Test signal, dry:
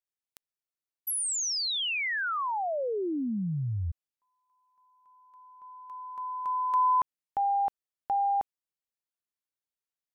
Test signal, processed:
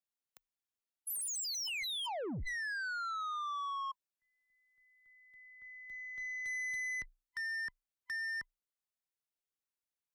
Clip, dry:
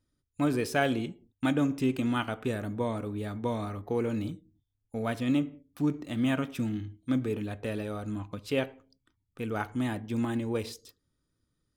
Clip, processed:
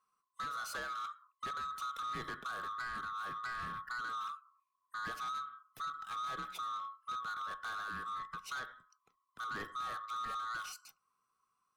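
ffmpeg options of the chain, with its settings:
-af "afftfilt=real='real(if(lt(b,960),b+48*(1-2*mod(floor(b/48),2)),b),0)':imag='imag(if(lt(b,960),b+48*(1-2*mod(floor(b/48),2)),b),0)':win_size=2048:overlap=0.75,acompressor=threshold=0.0447:ratio=16:attack=8.9:release=443:knee=1:detection=peak,afreqshift=-30,asoftclip=type=tanh:threshold=0.0224,volume=0.668"

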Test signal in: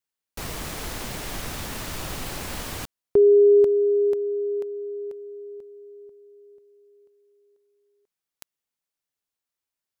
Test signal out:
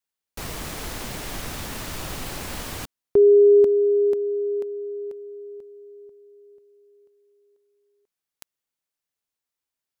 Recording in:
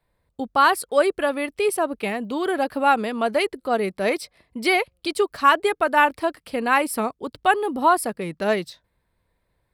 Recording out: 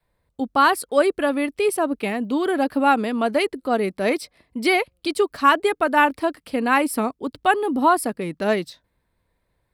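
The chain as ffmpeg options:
-af "adynamicequalizer=threshold=0.01:dfrequency=270:dqfactor=2.6:tfrequency=270:tqfactor=2.6:attack=5:release=100:ratio=0.375:range=3.5:mode=boostabove:tftype=bell"

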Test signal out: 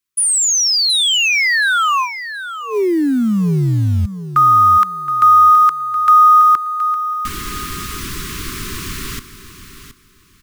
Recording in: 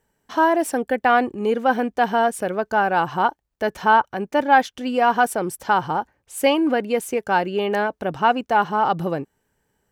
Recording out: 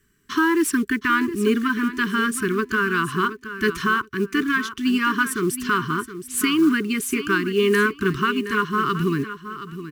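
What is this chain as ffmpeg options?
-af "alimiter=limit=0.237:level=0:latency=1:release=450,asuperstop=centerf=660:order=20:qfactor=1.1,acrusher=bits=7:mode=log:mix=0:aa=0.000001,aecho=1:1:721|1442|2163:0.251|0.0553|0.0122,volume=2.24"

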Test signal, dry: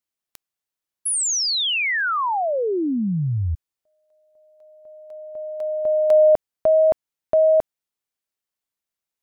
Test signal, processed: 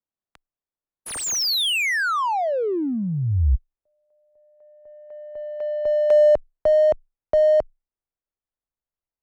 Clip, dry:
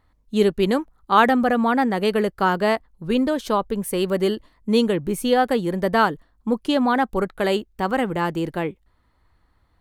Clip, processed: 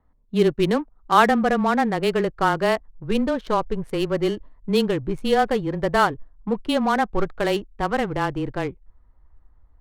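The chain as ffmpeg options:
-af "asubboost=boost=5:cutoff=82,afreqshift=-17,adynamicsmooth=sensitivity=4:basefreq=1300"

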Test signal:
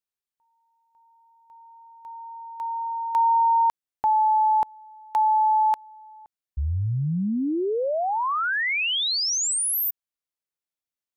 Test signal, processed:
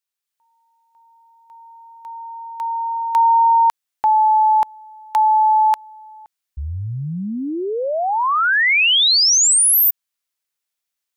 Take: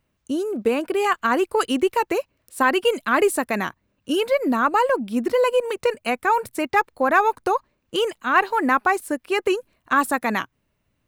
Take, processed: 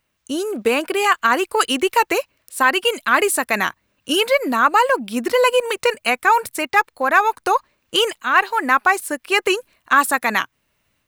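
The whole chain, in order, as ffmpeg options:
-af "tiltshelf=f=740:g=-6,dynaudnorm=f=180:g=3:m=1.78"

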